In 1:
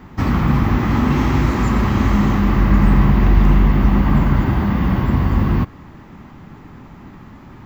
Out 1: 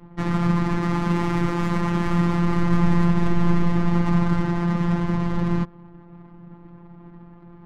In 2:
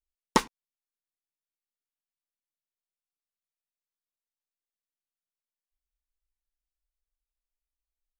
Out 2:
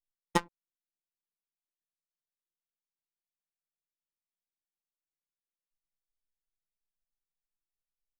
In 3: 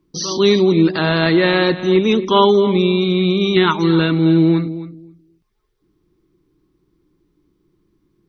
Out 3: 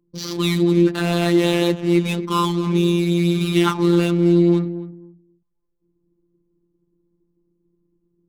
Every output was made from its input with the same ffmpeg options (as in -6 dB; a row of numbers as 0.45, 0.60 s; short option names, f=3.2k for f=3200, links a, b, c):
-af "adynamicsmooth=sensitivity=3.5:basefreq=630,afftfilt=real='hypot(re,im)*cos(PI*b)':imag='0':win_size=1024:overlap=0.75,volume=-1dB"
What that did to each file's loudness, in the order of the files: -6.0, -5.0, -3.5 LU